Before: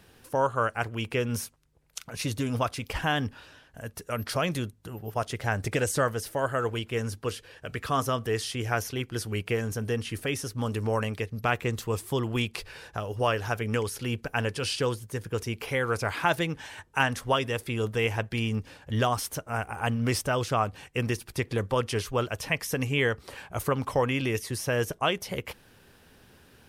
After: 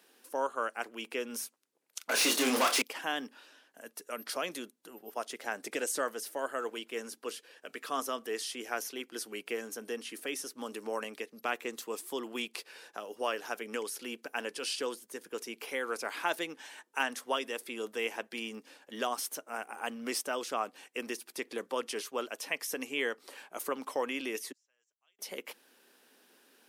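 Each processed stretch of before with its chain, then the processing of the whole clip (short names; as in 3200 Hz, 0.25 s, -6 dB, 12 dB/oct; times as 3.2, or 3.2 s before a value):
2.09–2.82 high shelf 7600 Hz +5.5 dB + overdrive pedal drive 33 dB, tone 4100 Hz, clips at -13 dBFS + doubler 31 ms -6 dB
24.52–25.19 band-pass 7400 Hz, Q 18 + air absorption 270 m
whole clip: steep high-pass 240 Hz 36 dB/oct; high shelf 4000 Hz +6 dB; gain -7.5 dB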